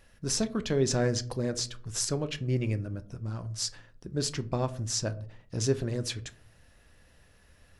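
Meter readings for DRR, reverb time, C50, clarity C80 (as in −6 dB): 11.0 dB, 0.50 s, 18.5 dB, 23.5 dB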